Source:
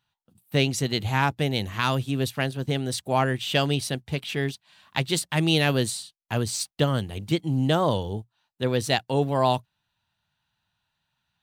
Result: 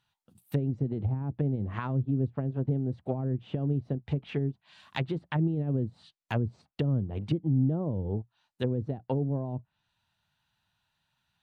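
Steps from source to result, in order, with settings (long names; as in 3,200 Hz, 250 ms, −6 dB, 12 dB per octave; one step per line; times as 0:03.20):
brickwall limiter −16 dBFS, peak gain reduction 7 dB
treble cut that deepens with the level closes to 310 Hz, closed at −23.5 dBFS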